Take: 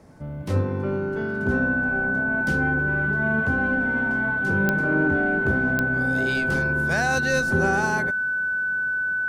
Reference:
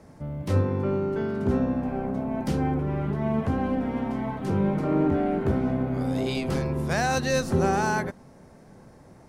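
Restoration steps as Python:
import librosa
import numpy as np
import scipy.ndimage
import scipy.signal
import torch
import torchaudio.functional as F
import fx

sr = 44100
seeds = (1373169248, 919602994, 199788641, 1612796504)

y = fx.fix_declick_ar(x, sr, threshold=10.0)
y = fx.notch(y, sr, hz=1500.0, q=30.0)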